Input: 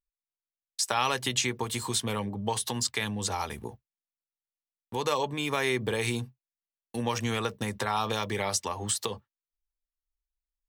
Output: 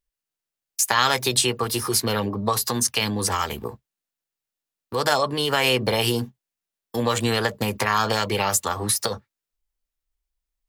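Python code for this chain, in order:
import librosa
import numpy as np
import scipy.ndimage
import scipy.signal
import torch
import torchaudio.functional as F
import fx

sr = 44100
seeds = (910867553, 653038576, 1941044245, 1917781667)

y = fx.formant_shift(x, sr, semitones=4)
y = F.gain(torch.from_numpy(y), 7.5).numpy()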